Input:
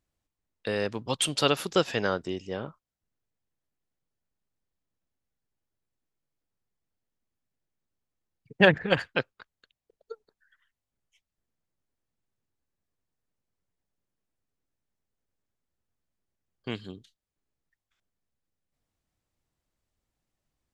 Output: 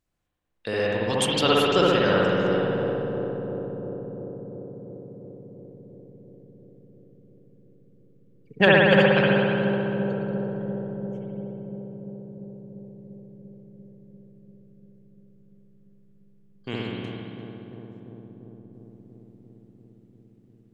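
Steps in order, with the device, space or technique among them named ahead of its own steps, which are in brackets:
dub delay into a spring reverb (feedback echo with a low-pass in the loop 345 ms, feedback 83%, low-pass 1,000 Hz, level −6 dB; spring reverb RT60 2.1 s, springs 60 ms, chirp 55 ms, DRR −5 dB)

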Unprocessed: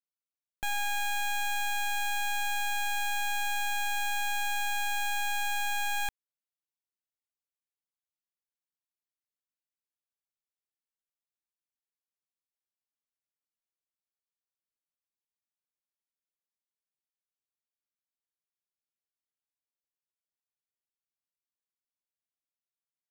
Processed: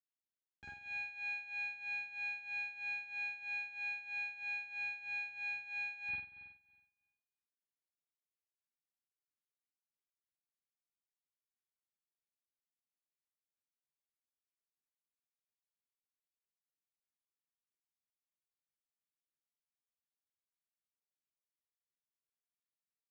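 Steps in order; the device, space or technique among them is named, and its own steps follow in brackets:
combo amplifier with spring reverb and tremolo (spring reverb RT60 1.2 s, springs 46 ms, chirp 75 ms, DRR −9 dB; amplitude tremolo 3.1 Hz, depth 79%; loudspeaker in its box 110–3,900 Hz, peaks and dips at 140 Hz −3 dB, 380 Hz +5 dB, 3,300 Hz −8 dB)
guitar amp tone stack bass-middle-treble 6-0-2
parametric band 3,300 Hz −3 dB 2.2 octaves
double-tracking delay 13 ms −2 dB
level +3.5 dB

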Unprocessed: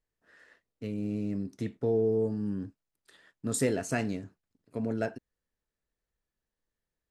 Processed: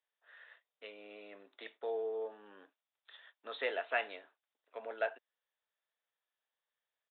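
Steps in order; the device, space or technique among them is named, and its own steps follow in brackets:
musical greeting card (downsampling to 8,000 Hz; high-pass filter 610 Hz 24 dB per octave; parametric band 3,600 Hz +7 dB 0.38 octaves)
level +1 dB

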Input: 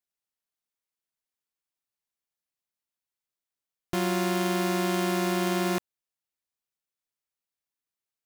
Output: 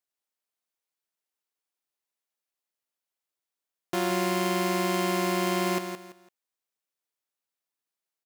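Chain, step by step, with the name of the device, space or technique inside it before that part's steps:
filter by subtraction (in parallel: low-pass filter 470 Hz 12 dB per octave + polarity inversion)
on the sum: repeating echo 168 ms, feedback 27%, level −8 dB

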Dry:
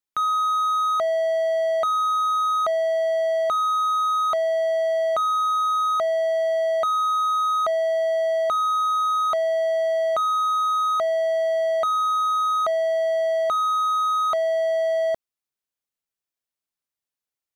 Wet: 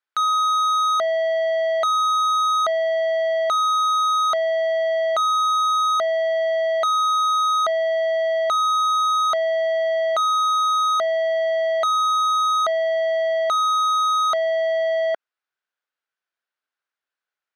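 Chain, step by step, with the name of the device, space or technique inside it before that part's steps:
intercom (band-pass filter 440–3,600 Hz; parametric band 1,500 Hz +10 dB 0.43 octaves; soft clipping −22.5 dBFS, distortion −12 dB)
level +4.5 dB

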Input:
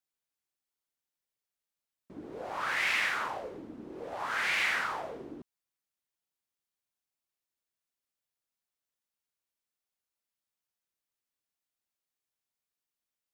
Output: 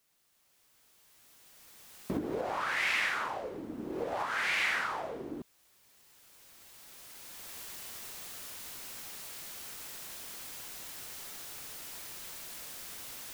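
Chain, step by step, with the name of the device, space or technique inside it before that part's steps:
cheap recorder with automatic gain (white noise bed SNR 34 dB; camcorder AGC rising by 11 dB per second)
level −1 dB

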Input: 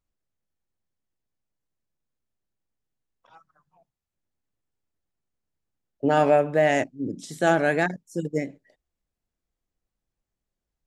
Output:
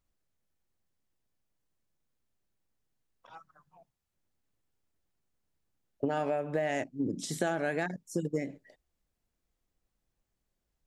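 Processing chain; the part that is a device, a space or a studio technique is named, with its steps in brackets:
serial compression, leveller first (downward compressor 1.5 to 1, threshold −25 dBFS, peak gain reduction 4.5 dB; downward compressor 8 to 1, threshold −30 dBFS, peak gain reduction 12 dB)
level +2.5 dB

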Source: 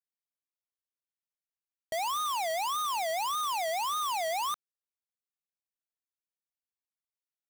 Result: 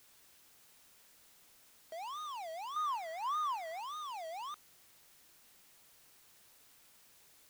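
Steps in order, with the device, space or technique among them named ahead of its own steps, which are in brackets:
aircraft radio (band-pass filter 310–2,500 Hz; hard clipping −35.5 dBFS, distortion −11 dB; white noise bed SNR 16 dB)
0:02.76–0:03.80: flat-topped bell 1,400 Hz +8.5 dB 1.3 octaves
level −6.5 dB

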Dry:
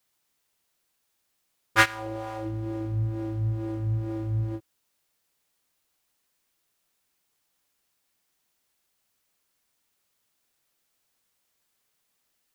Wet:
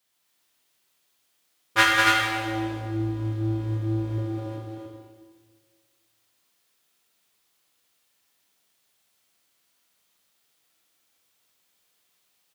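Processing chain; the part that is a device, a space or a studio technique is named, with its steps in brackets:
0:04.18–0:04.58: inverse Chebyshev high-pass filter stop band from 180 Hz, stop band 40 dB
stadium PA (high-pass filter 140 Hz 6 dB per octave; parametric band 3,400 Hz +4 dB 0.82 octaves; loudspeakers that aren't time-aligned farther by 68 metres −4 dB, 96 metres −4 dB; convolution reverb RT60 1.6 s, pre-delay 24 ms, DRR −0.5 dB)
level −1 dB

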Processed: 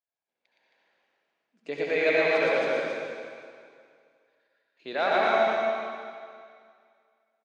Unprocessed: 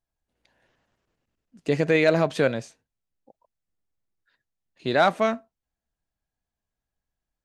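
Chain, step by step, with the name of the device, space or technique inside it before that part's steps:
station announcement (band-pass filter 370–4,700 Hz; parametric band 2,300 Hz +5.5 dB 0.2 octaves; loudspeakers that aren't time-aligned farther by 40 metres −1 dB, 92 metres −2 dB; convolution reverb RT60 2.1 s, pre-delay 61 ms, DRR −2.5 dB)
level −8.5 dB

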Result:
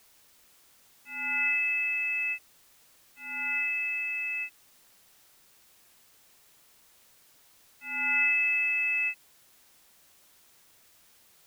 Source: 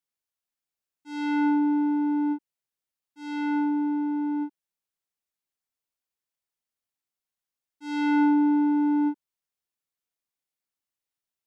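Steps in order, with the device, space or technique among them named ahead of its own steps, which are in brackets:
scrambled radio voice (band-pass filter 380–2,600 Hz; voice inversion scrambler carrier 2,900 Hz; white noise bed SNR 27 dB)

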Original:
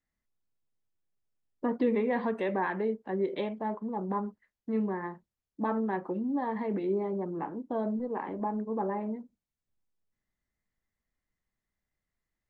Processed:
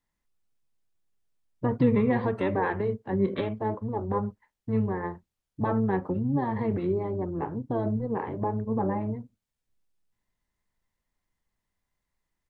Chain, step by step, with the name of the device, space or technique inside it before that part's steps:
octave pedal (pitch-shifted copies added −12 semitones −2 dB)
level +2 dB

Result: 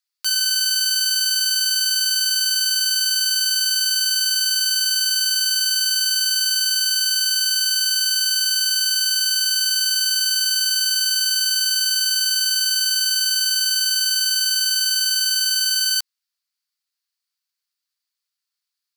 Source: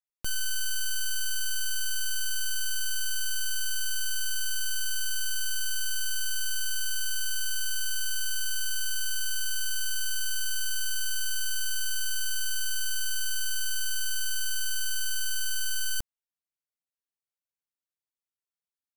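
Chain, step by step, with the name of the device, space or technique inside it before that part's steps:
headphones lying on a table (high-pass filter 1,100 Hz 24 dB per octave; parametric band 4,600 Hz +11.5 dB 0.48 octaves)
level +8.5 dB

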